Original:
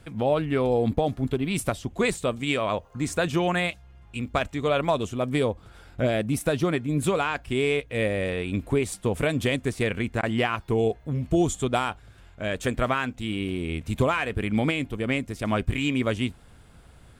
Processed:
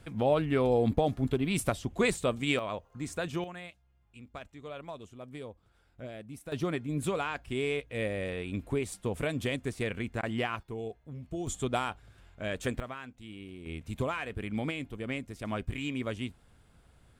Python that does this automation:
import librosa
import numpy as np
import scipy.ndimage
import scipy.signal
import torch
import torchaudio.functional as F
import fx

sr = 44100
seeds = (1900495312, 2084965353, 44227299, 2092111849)

y = fx.gain(x, sr, db=fx.steps((0.0, -3.0), (2.59, -9.5), (3.44, -19.0), (6.52, -7.5), (10.63, -15.0), (11.47, -6.0), (12.8, -16.5), (13.66, -9.5)))